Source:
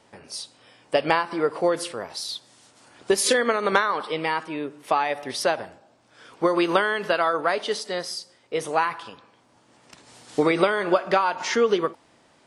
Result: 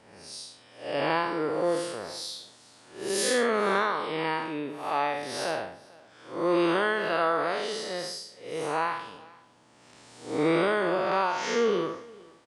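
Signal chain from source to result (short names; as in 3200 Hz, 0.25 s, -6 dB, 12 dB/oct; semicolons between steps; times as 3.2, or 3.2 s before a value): time blur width 0.187 s; echo 0.448 s -23.5 dB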